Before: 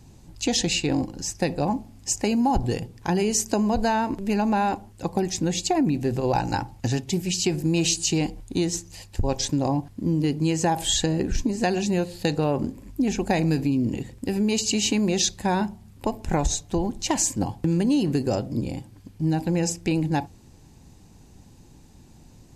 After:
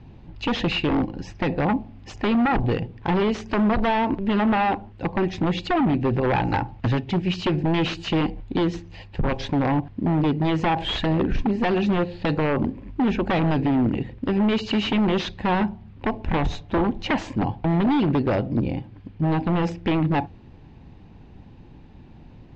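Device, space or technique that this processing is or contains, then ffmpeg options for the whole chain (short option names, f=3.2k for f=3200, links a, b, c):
synthesiser wavefolder: -filter_complex "[0:a]asettb=1/sr,asplit=3[a][b][c];[a]atrim=end=16.694[d];[b]atrim=start=16.69:end=17.36,asetpts=PTS-STARTPTS,afade=t=in:d=0.004:c=qsin,afade=t=out:st=0.666:d=0.004:c=qsin,equalizer=f=670:t=o:w=2.4:g=3[e];[c]atrim=start=17.356[f];[d][e]acrossfade=d=0.004:c1=hsin:c2=qsin[g];[g][f]acrossfade=d=0.004:c1=qsin:c2=hsin,aeval=exprs='0.106*(abs(mod(val(0)/0.106+3,4)-2)-1)':c=same,lowpass=f=3.2k:w=0.5412,lowpass=f=3.2k:w=1.3066,volume=4.5dB"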